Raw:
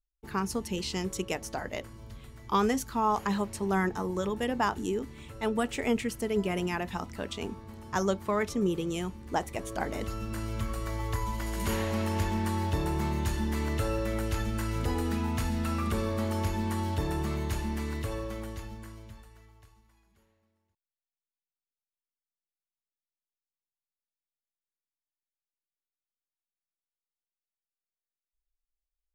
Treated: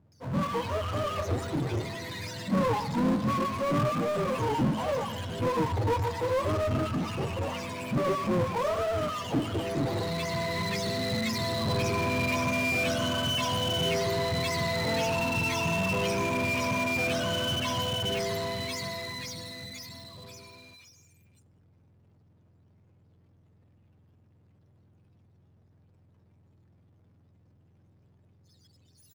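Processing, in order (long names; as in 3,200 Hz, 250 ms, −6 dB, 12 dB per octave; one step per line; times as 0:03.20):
frequency axis turned over on the octave scale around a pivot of 470 Hz
three-band delay without the direct sound lows, mids, highs 120/650 ms, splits 1,300/5,000 Hz
on a send at −16.5 dB: convolution reverb RT60 1.3 s, pre-delay 6 ms
on the sum: power curve on the samples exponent 0.5
level −3 dB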